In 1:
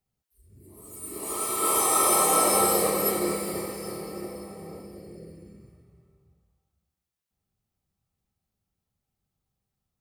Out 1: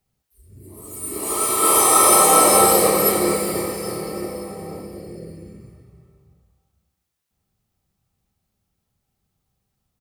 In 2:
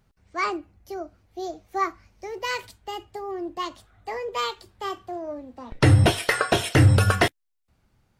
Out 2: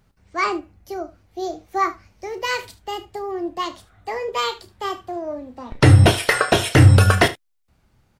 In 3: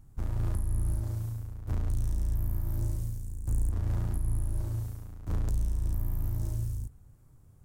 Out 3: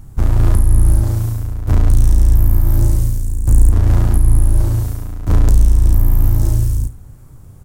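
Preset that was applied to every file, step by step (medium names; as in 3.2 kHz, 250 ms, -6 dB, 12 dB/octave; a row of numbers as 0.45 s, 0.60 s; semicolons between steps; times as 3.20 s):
on a send: early reflections 32 ms -12.5 dB, 74 ms -17.5 dB; on the sum: peak normalisation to -1.5 dBFS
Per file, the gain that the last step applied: +8.0 dB, +4.5 dB, +17.5 dB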